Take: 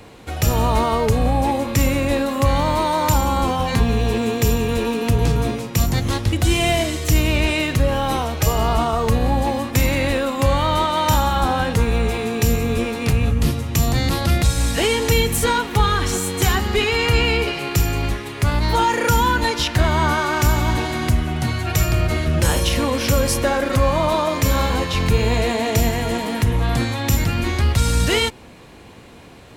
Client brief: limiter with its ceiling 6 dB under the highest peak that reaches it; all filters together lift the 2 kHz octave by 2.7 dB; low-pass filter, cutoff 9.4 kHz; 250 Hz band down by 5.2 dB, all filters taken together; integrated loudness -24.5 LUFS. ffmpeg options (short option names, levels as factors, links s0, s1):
-af "lowpass=9400,equalizer=f=250:t=o:g=-7,equalizer=f=2000:t=o:g=3.5,volume=0.668,alimiter=limit=0.188:level=0:latency=1"